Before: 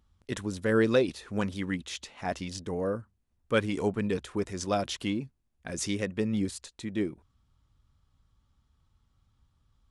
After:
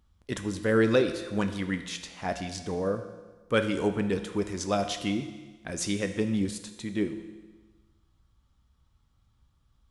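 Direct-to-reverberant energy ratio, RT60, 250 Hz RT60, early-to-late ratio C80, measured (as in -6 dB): 7.5 dB, 1.3 s, 1.3 s, 11.0 dB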